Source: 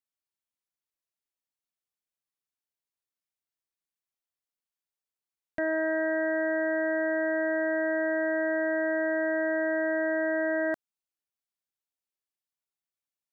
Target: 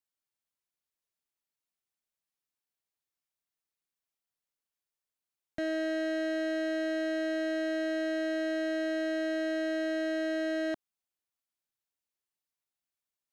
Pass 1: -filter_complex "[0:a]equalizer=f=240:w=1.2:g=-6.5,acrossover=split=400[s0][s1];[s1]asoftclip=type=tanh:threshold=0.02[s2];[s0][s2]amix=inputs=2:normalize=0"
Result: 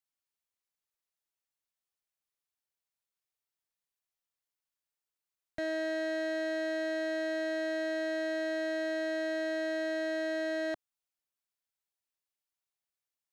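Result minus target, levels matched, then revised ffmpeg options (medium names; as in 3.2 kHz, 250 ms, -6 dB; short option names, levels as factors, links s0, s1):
250 Hz band -3.0 dB
-filter_complex "[0:a]acrossover=split=400[s0][s1];[s1]asoftclip=type=tanh:threshold=0.02[s2];[s0][s2]amix=inputs=2:normalize=0"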